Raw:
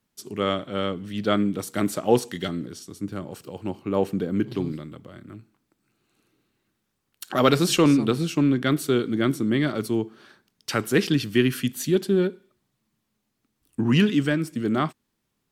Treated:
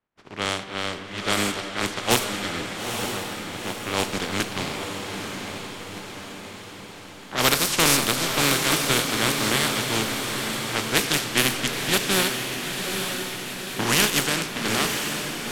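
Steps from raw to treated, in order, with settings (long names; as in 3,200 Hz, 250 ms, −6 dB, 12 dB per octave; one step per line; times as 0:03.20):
compressing power law on the bin magnitudes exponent 0.28
four-comb reverb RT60 3.4 s, combs from 32 ms, DRR 10 dB
low-pass that shuts in the quiet parts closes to 1,700 Hz, open at −16 dBFS
on a send: feedback delay with all-pass diffusion 902 ms, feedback 59%, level −5.5 dB
on the sum: level −1.5 dB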